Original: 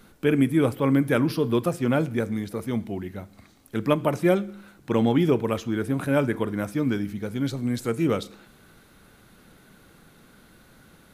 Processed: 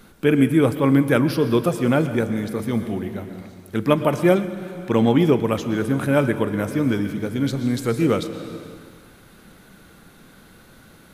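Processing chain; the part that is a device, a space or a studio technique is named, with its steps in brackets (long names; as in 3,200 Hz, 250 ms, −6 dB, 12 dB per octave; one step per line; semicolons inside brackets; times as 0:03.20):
compressed reverb return (on a send at −6 dB: convolution reverb RT60 1.6 s, pre-delay 110 ms + downward compressor, threshold −25 dBFS, peak gain reduction 10.5 dB)
on the sum: level +4 dB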